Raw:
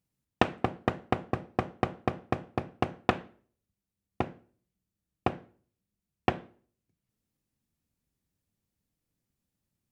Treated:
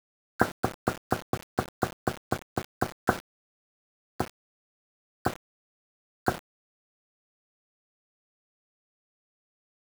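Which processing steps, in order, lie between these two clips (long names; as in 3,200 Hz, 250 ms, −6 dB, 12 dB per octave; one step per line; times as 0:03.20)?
hearing-aid frequency compression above 1,300 Hz 4 to 1
bit-depth reduction 6 bits, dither none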